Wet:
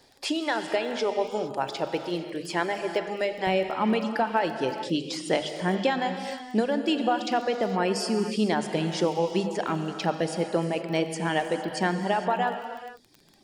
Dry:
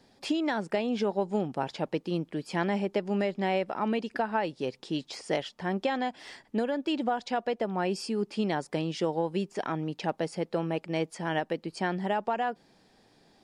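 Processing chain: peaking EQ 200 Hz -10.5 dB 0.88 oct, from 3.47 s +3 dB; reverb removal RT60 1.4 s; treble shelf 4.7 kHz +5.5 dB; hum notches 50/100/150/200/250 Hz; gated-style reverb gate 490 ms flat, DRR 6.5 dB; crackle 15 per s -40 dBFS; trim +4 dB

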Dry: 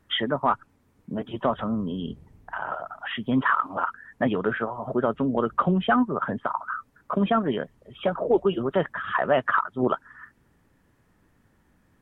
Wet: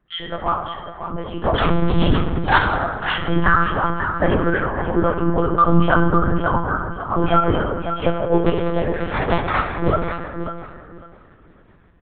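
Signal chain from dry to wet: 8.46–9.70 s: cycle switcher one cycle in 2, muted; chorus voices 2, 0.35 Hz, delay 16 ms, depth 1 ms; 1.54–2.58 s: waveshaping leveller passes 5; reverb removal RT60 0.51 s; in parallel at -11 dB: hard clipper -19.5 dBFS, distortion -16 dB; on the sum: level rider gain up to 15 dB; on a send: feedback delay 548 ms, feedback 19%, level -9.5 dB; on the sum: plate-style reverb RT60 1.7 s, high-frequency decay 0.55×, DRR 2.5 dB; monotone LPC vocoder at 8 kHz 170 Hz; trim -4.5 dB

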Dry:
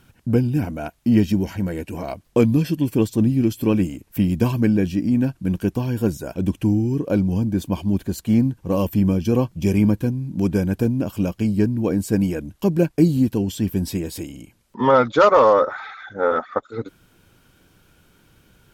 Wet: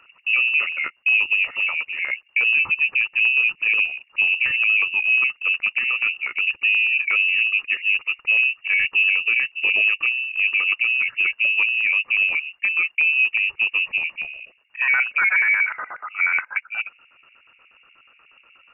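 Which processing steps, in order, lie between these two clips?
LFO low-pass square 8.3 Hz 610–1800 Hz; peak limiter -11.5 dBFS, peak gain reduction 11.5 dB; frequency inversion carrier 2.8 kHz

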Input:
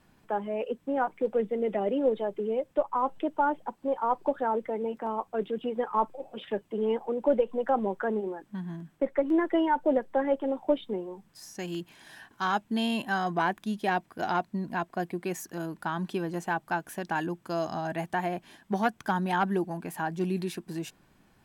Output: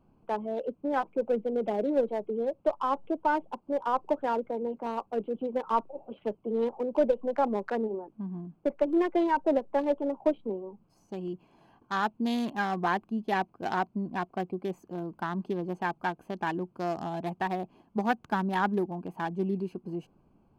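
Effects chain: local Wiener filter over 25 samples; speed mistake 24 fps film run at 25 fps

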